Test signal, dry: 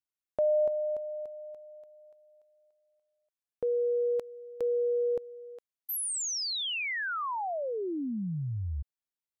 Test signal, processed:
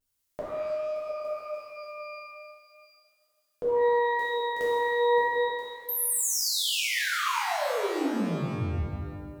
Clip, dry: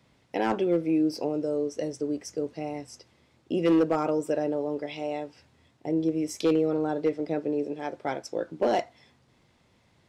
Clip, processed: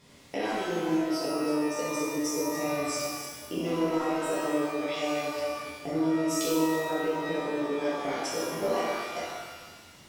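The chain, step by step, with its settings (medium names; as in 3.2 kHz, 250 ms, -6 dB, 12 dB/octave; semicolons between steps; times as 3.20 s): chunks repeated in reverse 219 ms, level -11 dB; treble shelf 4.3 kHz +11 dB; compression 6:1, threshold -36 dBFS; wow and flutter 0.41 Hz 22 cents; pitch-shifted reverb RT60 1.3 s, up +12 st, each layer -8 dB, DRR -8 dB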